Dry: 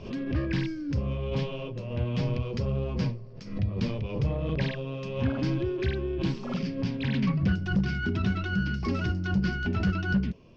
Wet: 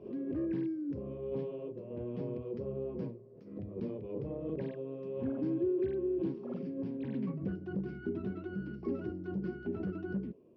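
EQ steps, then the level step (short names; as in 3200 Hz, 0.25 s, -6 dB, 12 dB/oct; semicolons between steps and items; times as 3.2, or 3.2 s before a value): band-pass 370 Hz, Q 2.3; 0.0 dB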